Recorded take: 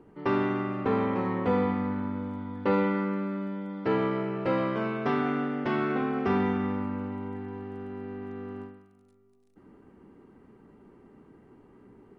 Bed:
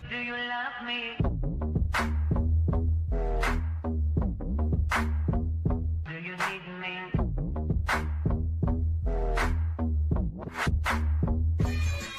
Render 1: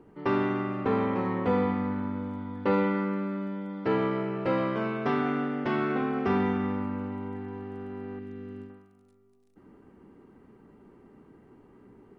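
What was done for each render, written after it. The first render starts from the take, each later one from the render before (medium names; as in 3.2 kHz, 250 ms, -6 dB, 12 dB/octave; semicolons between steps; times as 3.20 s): 8.19–8.70 s: peaking EQ 910 Hz -13 dB 1.4 oct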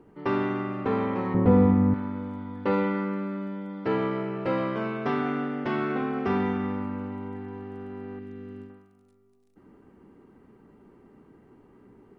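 1.34–1.94 s: tilt EQ -4 dB/octave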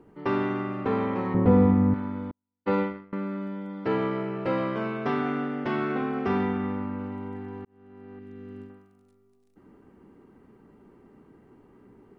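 2.31–3.13 s: gate -26 dBFS, range -50 dB; 6.45–7.00 s: distance through air 82 m; 7.65–8.60 s: fade in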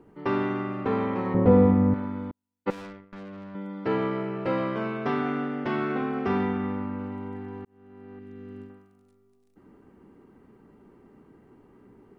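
1.26–2.05 s: peaking EQ 550 Hz +6 dB 0.44 oct; 2.70–3.55 s: valve stage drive 39 dB, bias 0.8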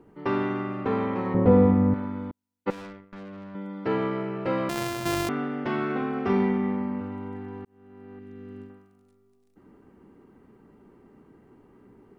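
4.69–5.29 s: sorted samples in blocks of 128 samples; 6.23–7.01 s: doubling 36 ms -4.5 dB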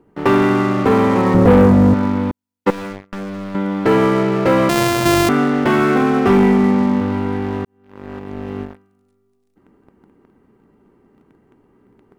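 waveshaping leveller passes 3; in parallel at 0 dB: compression, threshold -23 dBFS, peak gain reduction 12.5 dB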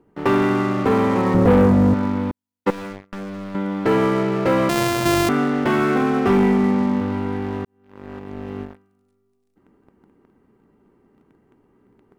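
trim -4 dB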